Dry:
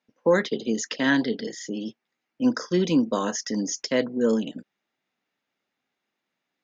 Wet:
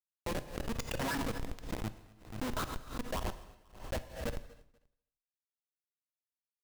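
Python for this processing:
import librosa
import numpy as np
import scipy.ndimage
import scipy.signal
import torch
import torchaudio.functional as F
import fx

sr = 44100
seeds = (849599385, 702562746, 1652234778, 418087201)

y = fx.highpass(x, sr, hz=88.0, slope=6)
y = fx.low_shelf(y, sr, hz=200.0, db=5.0)
y = fx.filter_lfo_bandpass(y, sr, shape='saw_up', hz=8.7, low_hz=350.0, high_hz=2400.0, q=3.3)
y = fx.power_curve(y, sr, exponent=0.5, at=(0.55, 2.72))
y = fx.fixed_phaser(y, sr, hz=910.0, stages=4)
y = fx.schmitt(y, sr, flips_db=-33.0)
y = fx.echo_feedback(y, sr, ms=242, feedback_pct=30, wet_db=-24)
y = fx.rev_gated(y, sr, seeds[0], gate_ms=360, shape='falling', drr_db=11.5)
y = fx.pre_swell(y, sr, db_per_s=110.0)
y = y * librosa.db_to_amplitude(6.0)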